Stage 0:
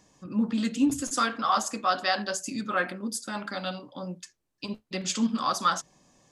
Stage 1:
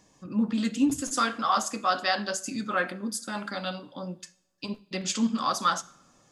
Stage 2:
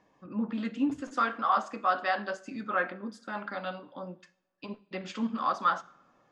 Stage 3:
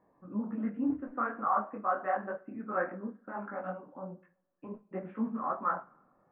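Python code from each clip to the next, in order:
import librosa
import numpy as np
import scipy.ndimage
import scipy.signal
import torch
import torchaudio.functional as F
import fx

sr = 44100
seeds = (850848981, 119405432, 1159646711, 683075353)

y1 = fx.rev_double_slope(x, sr, seeds[0], early_s=0.55, late_s=2.0, knee_db=-22, drr_db=15.5)
y2 = scipy.signal.sosfilt(scipy.signal.butter(2, 2000.0, 'lowpass', fs=sr, output='sos'), y1)
y2 = fx.low_shelf(y2, sr, hz=220.0, db=-12.0)
y3 = scipy.signal.sosfilt(scipy.signal.bessel(8, 1100.0, 'lowpass', norm='mag', fs=sr, output='sos'), y2)
y3 = fx.detune_double(y3, sr, cents=48)
y3 = F.gain(torch.from_numpy(y3), 3.0).numpy()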